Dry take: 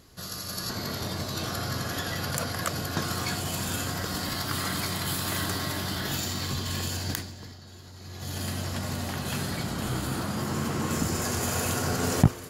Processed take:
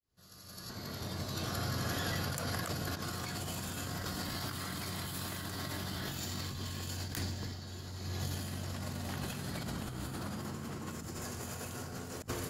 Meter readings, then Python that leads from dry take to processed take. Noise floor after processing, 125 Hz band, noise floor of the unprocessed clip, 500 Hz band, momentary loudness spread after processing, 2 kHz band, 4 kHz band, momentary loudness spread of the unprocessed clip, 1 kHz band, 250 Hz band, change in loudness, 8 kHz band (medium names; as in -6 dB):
-49 dBFS, -8.5 dB, -45 dBFS, -9.5 dB, 7 LU, -9.0 dB, -9.0 dB, 7 LU, -9.5 dB, -9.5 dB, -9.0 dB, -10.5 dB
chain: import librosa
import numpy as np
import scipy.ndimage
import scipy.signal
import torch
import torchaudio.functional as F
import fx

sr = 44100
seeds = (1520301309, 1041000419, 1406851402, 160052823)

y = fx.fade_in_head(x, sr, length_s=3.41)
y = fx.low_shelf(y, sr, hz=210.0, db=3.5)
y = fx.over_compress(y, sr, threshold_db=-35.0, ratio=-1.0)
y = y + 10.0 ** (-20.0 / 20.0) * np.pad(y, (int(1182 * sr / 1000.0), 0))[:len(y)]
y = y * librosa.db_to_amplitude(-4.5)